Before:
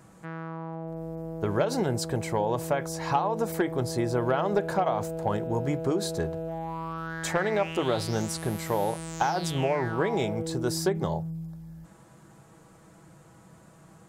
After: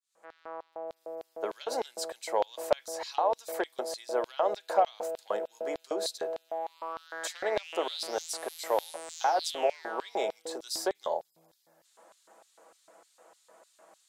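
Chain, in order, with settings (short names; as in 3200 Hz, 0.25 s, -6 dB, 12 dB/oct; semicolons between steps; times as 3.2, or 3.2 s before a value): opening faded in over 0.54 s; steep high-pass 190 Hz 48 dB/oct; LFO high-pass square 3.3 Hz 590–3900 Hz; gain -3.5 dB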